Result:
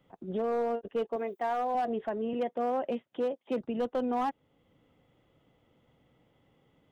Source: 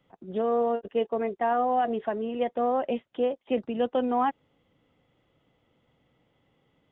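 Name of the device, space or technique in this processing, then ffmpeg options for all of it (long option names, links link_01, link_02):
clipper into limiter: -filter_complex "[0:a]asettb=1/sr,asplit=3[link_01][link_02][link_03];[link_01]atrim=end=1.164[link_04];[link_02]atrim=start=1.16:end=1.75,asetpts=PTS-STARTPTS,afade=type=in:duration=0.004:curve=qsin,afade=type=out:start_time=0.586:duration=0.004:curve=qsin,aemphasis=mode=production:type=bsi[link_05];[link_03]atrim=start=1.746[link_06];[link_04][link_05]acrossfade=duration=0.004:curve1=hsin:curve2=qsin[link_07];[link_07][link_06]acrossfade=duration=0.004:curve1=qsin:curve2=hsin,asoftclip=type=hard:threshold=-20.5dB,alimiter=level_in=2dB:limit=-24dB:level=0:latency=1:release=445,volume=-2dB,asettb=1/sr,asplit=3[link_08][link_09][link_10];[link_08]atrim=end=2.334[link_11];[link_09]atrim=start=2.33:end=3.61,asetpts=PTS-STARTPTS,afade=type=in:duration=0.004:curve=qsin,afade=type=out:start_time=1.276:duration=0.004:curve=qsin,highpass=frequency=110:width=0.5412,highpass=frequency=110:width=1.3066[link_12];[link_10]atrim=start=3.606[link_13];[link_11][link_12]acrossfade=duration=0.004:curve1=hsin:curve2=qsin[link_14];[link_14][link_13]acrossfade=duration=0.004:curve1=qsin:curve2=hsin,equalizer=frequency=2600:width_type=o:width=2.6:gain=-3,volume=2dB"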